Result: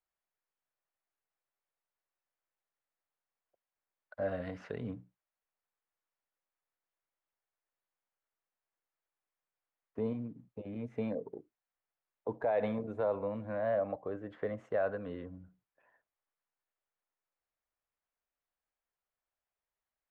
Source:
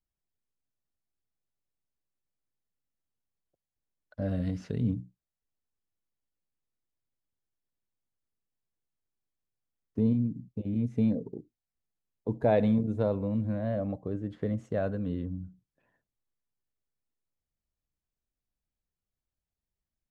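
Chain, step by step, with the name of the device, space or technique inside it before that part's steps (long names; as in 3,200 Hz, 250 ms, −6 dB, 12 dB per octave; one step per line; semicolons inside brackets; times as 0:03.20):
DJ mixer with the lows and highs turned down (three-way crossover with the lows and the highs turned down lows −21 dB, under 510 Hz, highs −19 dB, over 2,400 Hz; brickwall limiter −29.5 dBFS, peak gain reduction 11.5 dB)
level +6.5 dB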